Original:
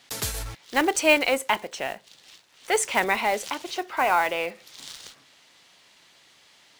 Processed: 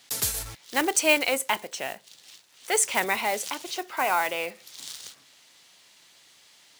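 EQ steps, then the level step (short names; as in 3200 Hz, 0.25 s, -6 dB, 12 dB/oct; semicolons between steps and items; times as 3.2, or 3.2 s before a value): HPF 54 Hz; high shelf 5100 Hz +10.5 dB; -3.5 dB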